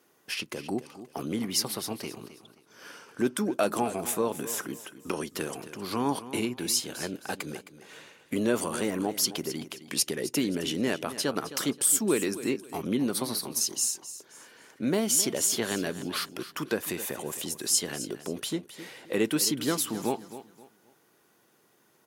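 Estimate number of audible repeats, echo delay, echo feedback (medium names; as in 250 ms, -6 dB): 3, 264 ms, 30%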